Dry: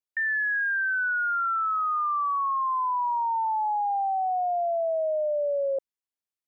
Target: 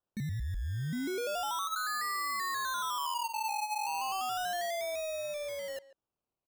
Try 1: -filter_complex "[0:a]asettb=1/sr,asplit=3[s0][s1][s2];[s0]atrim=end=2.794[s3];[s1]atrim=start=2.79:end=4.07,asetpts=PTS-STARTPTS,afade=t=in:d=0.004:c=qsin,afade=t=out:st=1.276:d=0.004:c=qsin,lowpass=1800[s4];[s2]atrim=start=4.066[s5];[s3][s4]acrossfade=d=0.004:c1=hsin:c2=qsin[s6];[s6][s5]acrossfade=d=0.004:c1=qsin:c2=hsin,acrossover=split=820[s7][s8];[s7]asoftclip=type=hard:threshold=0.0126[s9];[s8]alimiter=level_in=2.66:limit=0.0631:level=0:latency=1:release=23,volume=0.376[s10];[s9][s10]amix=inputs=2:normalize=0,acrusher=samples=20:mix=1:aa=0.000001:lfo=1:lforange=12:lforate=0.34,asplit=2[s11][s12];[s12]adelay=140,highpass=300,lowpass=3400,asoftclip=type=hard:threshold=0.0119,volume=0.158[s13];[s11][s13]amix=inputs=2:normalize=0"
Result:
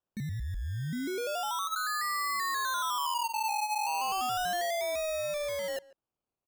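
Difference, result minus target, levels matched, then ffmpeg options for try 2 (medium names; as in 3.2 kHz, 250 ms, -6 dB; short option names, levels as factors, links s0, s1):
hard clipper: distortion -4 dB
-filter_complex "[0:a]asettb=1/sr,asplit=3[s0][s1][s2];[s0]atrim=end=2.794[s3];[s1]atrim=start=2.79:end=4.07,asetpts=PTS-STARTPTS,afade=t=in:d=0.004:c=qsin,afade=t=out:st=1.276:d=0.004:c=qsin,lowpass=1800[s4];[s2]atrim=start=4.066[s5];[s3][s4]acrossfade=d=0.004:c1=hsin:c2=qsin[s6];[s6][s5]acrossfade=d=0.004:c1=qsin:c2=hsin,acrossover=split=820[s7][s8];[s7]asoftclip=type=hard:threshold=0.00316[s9];[s8]alimiter=level_in=2.66:limit=0.0631:level=0:latency=1:release=23,volume=0.376[s10];[s9][s10]amix=inputs=2:normalize=0,acrusher=samples=20:mix=1:aa=0.000001:lfo=1:lforange=12:lforate=0.34,asplit=2[s11][s12];[s12]adelay=140,highpass=300,lowpass=3400,asoftclip=type=hard:threshold=0.0119,volume=0.158[s13];[s11][s13]amix=inputs=2:normalize=0"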